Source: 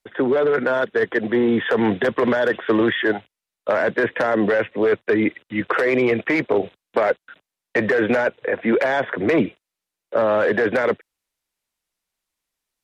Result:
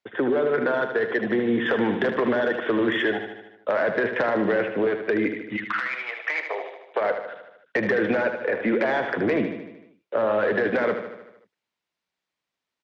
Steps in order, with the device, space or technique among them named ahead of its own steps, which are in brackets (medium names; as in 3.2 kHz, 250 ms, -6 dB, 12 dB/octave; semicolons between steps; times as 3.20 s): AM radio (band-pass 110–4200 Hz; compression, threshold -19 dBFS, peak gain reduction 6 dB; saturation -11.5 dBFS, distortion -26 dB); 5.56–7.00 s: high-pass 1.3 kHz -> 380 Hz 24 dB/octave; feedback delay 76 ms, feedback 59%, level -8 dB